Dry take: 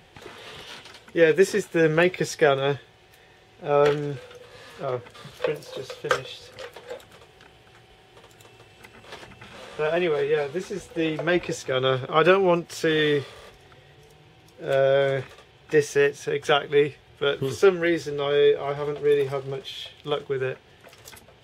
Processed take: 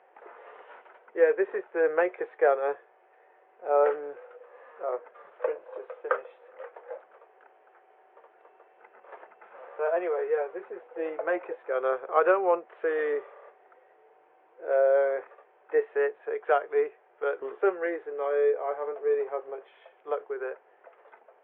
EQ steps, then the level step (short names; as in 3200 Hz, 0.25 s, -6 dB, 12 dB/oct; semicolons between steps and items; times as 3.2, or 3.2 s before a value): Gaussian blur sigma 4.9 samples; HPF 500 Hz 24 dB/oct; air absorption 400 m; +2.0 dB